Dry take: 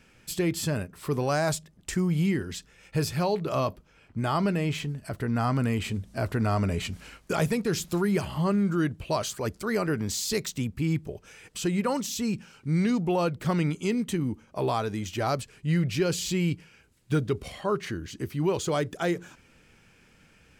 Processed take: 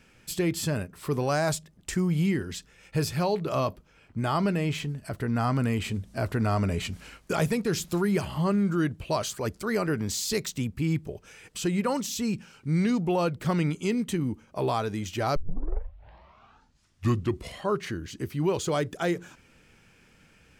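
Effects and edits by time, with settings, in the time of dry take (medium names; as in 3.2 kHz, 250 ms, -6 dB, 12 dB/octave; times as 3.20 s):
15.36 s: tape start 2.25 s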